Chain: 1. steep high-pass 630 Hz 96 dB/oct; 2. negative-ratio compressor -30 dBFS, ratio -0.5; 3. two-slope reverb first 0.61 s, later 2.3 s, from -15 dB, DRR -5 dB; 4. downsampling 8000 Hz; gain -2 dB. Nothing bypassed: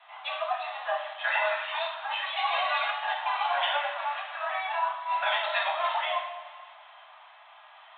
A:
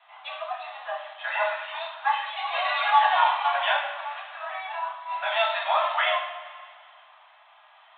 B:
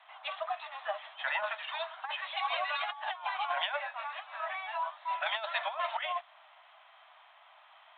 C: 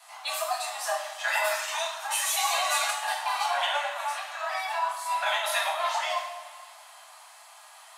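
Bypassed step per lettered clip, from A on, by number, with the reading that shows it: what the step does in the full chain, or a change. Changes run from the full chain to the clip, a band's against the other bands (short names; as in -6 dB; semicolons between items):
2, crest factor change +2.5 dB; 3, loudness change -6.0 LU; 4, 4 kHz band +2.0 dB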